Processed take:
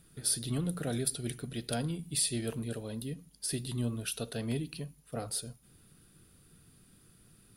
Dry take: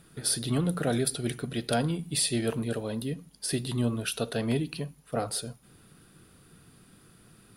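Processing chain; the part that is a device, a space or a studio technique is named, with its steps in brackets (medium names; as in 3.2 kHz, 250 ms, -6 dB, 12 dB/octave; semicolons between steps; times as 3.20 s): smiley-face EQ (bass shelf 88 Hz +8 dB; peaking EQ 970 Hz -3.5 dB 1.8 oct; treble shelf 5.5 kHz +6.5 dB); trim -7 dB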